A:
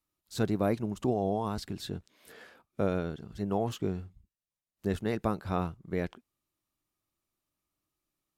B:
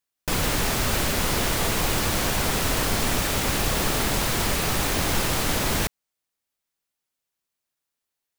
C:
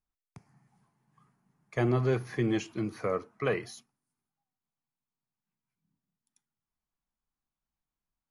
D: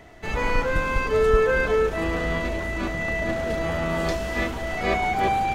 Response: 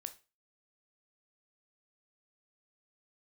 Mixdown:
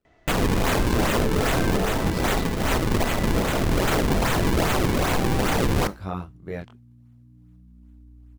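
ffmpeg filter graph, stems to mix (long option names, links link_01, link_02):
-filter_complex "[0:a]aeval=exprs='val(0)+0.00501*(sin(2*PI*60*n/s)+sin(2*PI*2*60*n/s)/2+sin(2*PI*3*60*n/s)/3+sin(2*PI*4*60*n/s)/4+sin(2*PI*5*60*n/s)/5)':channel_layout=same,flanger=delay=19.5:depth=5.8:speed=0.39,adelay=550,volume=2.5dB[link_01];[1:a]acrusher=samples=39:mix=1:aa=0.000001:lfo=1:lforange=62.4:lforate=2.5,volume=2dB,asplit=2[link_02][link_03];[link_03]volume=-3.5dB[link_04];[2:a]acompressor=threshold=-36dB:ratio=2.5,volume=-16dB,asplit=2[link_05][link_06];[3:a]lowpass=6300,adelay=50,volume=-13.5dB,asplit=2[link_07][link_08];[link_08]volume=-5dB[link_09];[link_06]apad=whole_len=369830[link_10];[link_02][link_10]sidechaincompress=threshold=-58dB:ratio=8:attack=16:release=159[link_11];[4:a]atrim=start_sample=2205[link_12];[link_04][link_09]amix=inputs=2:normalize=0[link_13];[link_13][link_12]afir=irnorm=-1:irlink=0[link_14];[link_01][link_11][link_05][link_07][link_14]amix=inputs=5:normalize=0,alimiter=limit=-14dB:level=0:latency=1:release=23"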